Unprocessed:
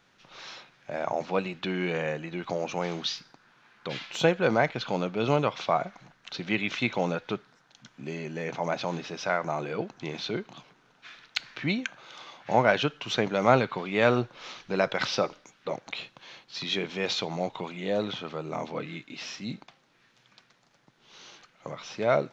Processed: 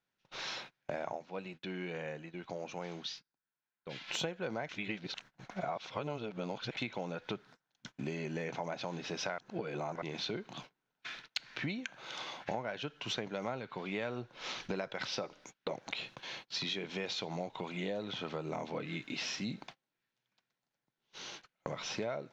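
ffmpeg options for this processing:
ffmpeg -i in.wav -filter_complex "[0:a]asplit=7[link_01][link_02][link_03][link_04][link_05][link_06][link_07];[link_01]atrim=end=1.46,asetpts=PTS-STARTPTS,afade=type=out:start_time=1.16:duration=0.3:curve=exp:silence=0.211349[link_08];[link_02]atrim=start=1.46:end=3.79,asetpts=PTS-STARTPTS,volume=-13.5dB[link_09];[link_03]atrim=start=3.79:end=4.692,asetpts=PTS-STARTPTS,afade=type=in:duration=0.3:curve=exp:silence=0.211349[link_10];[link_04]atrim=start=4.688:end=6.772,asetpts=PTS-STARTPTS,areverse[link_11];[link_05]atrim=start=6.768:end=9.382[link_12];[link_06]atrim=start=9.378:end=10.022,asetpts=PTS-STARTPTS,areverse[link_13];[link_07]atrim=start=10.018[link_14];[link_08][link_09][link_10]concat=n=3:v=0:a=1[link_15];[link_15][link_11]acrossfade=duration=0.004:curve1=hsin:curve2=hsin[link_16];[link_16][link_12]acrossfade=duration=0.004:curve1=hsin:curve2=hsin[link_17];[link_17][link_13]acrossfade=duration=0.004:curve1=hsin:curve2=hsin[link_18];[link_18][link_14]acrossfade=duration=0.004:curve1=hsin:curve2=hsin,agate=range=-27dB:threshold=-51dB:ratio=16:detection=peak,bandreject=frequency=1200:width=12,acompressor=threshold=-38dB:ratio=12,volume=3.5dB" out.wav

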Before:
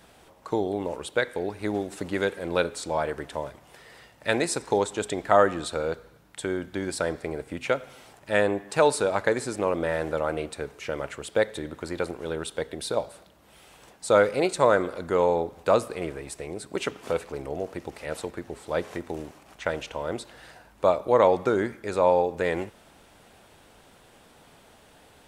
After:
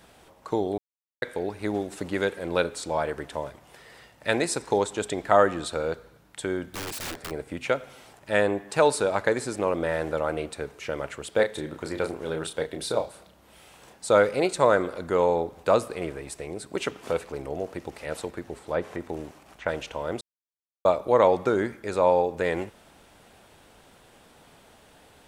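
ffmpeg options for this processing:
ffmpeg -i in.wav -filter_complex "[0:a]asettb=1/sr,asplit=3[link_01][link_02][link_03];[link_01]atrim=end=6.714[link_04];[link_02]atrim=start=6.71:end=7.31,asetpts=PTS-STARTPTS,afade=type=in:duration=0.004:curve=qsin,afade=type=out:start_time=0.596:duration=0.004:curve=qsin,aeval=exprs='(mod(28.2*val(0)+1,2)-1)/28.2':channel_layout=same[link_05];[link_03]atrim=start=7.306[link_06];[link_04][link_05]acrossfade=duration=0.004:curve1=hsin:curve2=qsin[link_07];[link_07][link_06]acrossfade=duration=0.004:curve1=qsin:curve2=hsin,asettb=1/sr,asplit=3[link_08][link_09][link_10];[link_08]atrim=end=11.354[link_11];[link_09]atrim=start=11.35:end=14.06,asetpts=PTS-STARTPTS,afade=type=in:duration=0.004:curve=qsin,afade=type=out:start_time=2.706:duration=0.004:curve=qsin,asplit=2[link_12][link_13];[link_13]adelay=32,volume=-6.5dB[link_14];[link_12][link_14]amix=inputs=2:normalize=0,atrim=end_sample=119511[link_15];[link_10]atrim=start=14.056[link_16];[link_11][link_15]acrossfade=duration=0.004:curve1=hsin:curve2=qsin[link_17];[link_17][link_16]acrossfade=duration=0.004:curve1=qsin:curve2=hsin,asettb=1/sr,asplit=3[link_18][link_19][link_20];[link_18]atrim=end=18.594[link_21];[link_19]atrim=start=18.59:end=19.68,asetpts=PTS-STARTPTS,afade=type=in:duration=0.004:curve=qsin,afade=type=out:start_time=1.086:duration=0.004:curve=qsin,acrossover=split=2600[link_22][link_23];[link_23]acompressor=threshold=-53dB:ratio=4:attack=1:release=60[link_24];[link_22][link_24]amix=inputs=2:normalize=0[link_25];[link_20]atrim=start=19.676[link_26];[link_21][link_25]acrossfade=duration=0.004:curve1=hsin:curve2=qsin[link_27];[link_27][link_26]acrossfade=duration=0.004:curve1=qsin:curve2=hsin,asplit=5[link_28][link_29][link_30][link_31][link_32];[link_28]atrim=end=0.78,asetpts=PTS-STARTPTS,afade=type=out:start_time=0.776:duration=0.004:curve=hsin[link_33];[link_29]atrim=start=0.78:end=1.22,asetpts=PTS-STARTPTS,volume=0[link_34];[link_30]atrim=start=1.22:end=20.21,asetpts=PTS-STARTPTS,afade=type=in:duration=0.004:curve=hsin,afade=type=out:start_time=18.986:duration=0.004:curve=hsin[link_35];[link_31]atrim=start=20.21:end=20.85,asetpts=PTS-STARTPTS,volume=0[link_36];[link_32]atrim=start=20.85,asetpts=PTS-STARTPTS,afade=type=in:duration=0.004:curve=hsin[link_37];[link_33][link_34][link_35][link_36][link_37]concat=n=5:v=0:a=1" out.wav

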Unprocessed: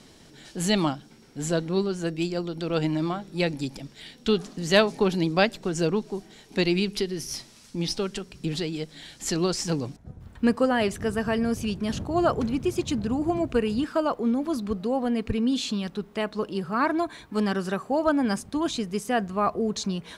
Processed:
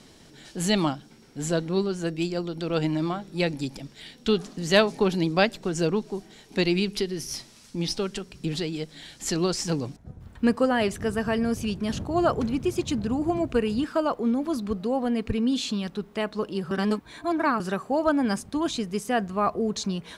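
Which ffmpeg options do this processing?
ffmpeg -i in.wav -filter_complex "[0:a]asplit=3[link_01][link_02][link_03];[link_01]atrim=end=16.712[link_04];[link_02]atrim=start=16.708:end=17.602,asetpts=PTS-STARTPTS,areverse[link_05];[link_03]atrim=start=17.598[link_06];[link_04][link_05]acrossfade=duration=0.004:curve1=hsin:curve2=hsin[link_07];[link_07][link_06]acrossfade=duration=0.004:curve1=hsin:curve2=hsin" out.wav

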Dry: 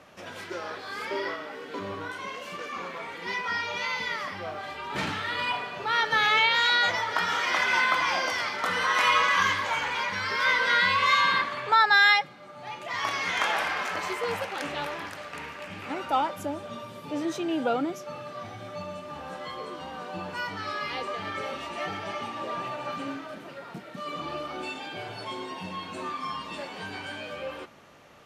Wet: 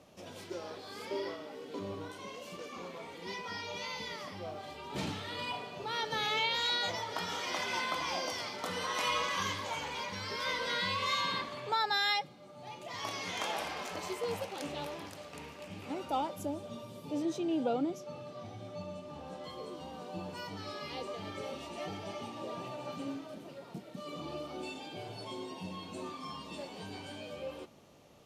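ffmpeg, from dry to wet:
ffmpeg -i in.wav -filter_complex "[0:a]asettb=1/sr,asplit=3[link_01][link_02][link_03];[link_01]atrim=end=17.224[link_04];[link_02]atrim=start=17.22:end=19.44,asetpts=PTS-STARTPTS,afade=type=in:duration=0.004:curve=qsin,afade=type=out:start_time=2.216:duration=0.004:curve=qsin,highshelf=frequency=9500:gain=-11[link_05];[link_03]atrim=start=19.436[link_06];[link_04][link_05]acrossfade=duration=0.004:curve1=hsin:curve2=qsin[link_07];[link_07][link_06]acrossfade=duration=0.004:curve1=qsin:curve2=hsin,equalizer=frequency=1600:width_type=o:width=1.5:gain=-13.5,volume=-2.5dB" out.wav

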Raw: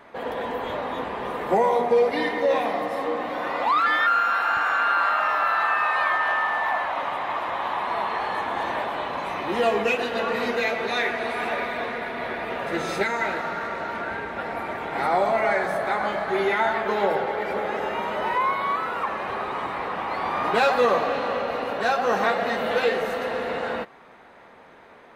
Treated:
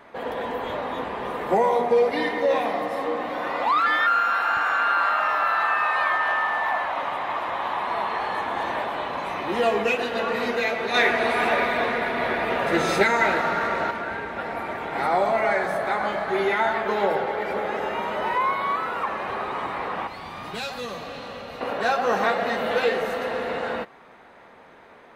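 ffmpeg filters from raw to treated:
ffmpeg -i in.wav -filter_complex "[0:a]asettb=1/sr,asplit=3[link_01][link_02][link_03];[link_01]atrim=end=10.944[link_04];[link_02]atrim=start=10.94:end=13.91,asetpts=PTS-STARTPTS,afade=type=in:duration=0.004:curve=qsin,afade=type=out:start_time=2.966:duration=0.004:curve=qsin,acontrast=33[link_05];[link_03]atrim=start=13.906[link_06];[link_04][link_05]acrossfade=duration=0.004:curve1=hsin:curve2=qsin[link_07];[link_07][link_06]acrossfade=duration=0.004:curve1=qsin:curve2=hsin,asettb=1/sr,asplit=3[link_08][link_09][link_10];[link_08]atrim=end=20.074[link_11];[link_09]atrim=start=20.07:end=21.61,asetpts=PTS-STARTPTS,afade=type=in:duration=0.004:curve=qsin,afade=type=out:start_time=1.536:duration=0.004:curve=qsin,acrossover=split=190|3000[link_12][link_13][link_14];[link_13]acompressor=threshold=-45dB:ratio=2:attack=3.2:release=140:knee=2.83:detection=peak[link_15];[link_12][link_15][link_14]amix=inputs=3:normalize=0[link_16];[link_10]atrim=start=21.606[link_17];[link_11][link_16]acrossfade=duration=0.004:curve1=hsin:curve2=qsin[link_18];[link_18][link_17]acrossfade=duration=0.004:curve1=qsin:curve2=hsin" out.wav

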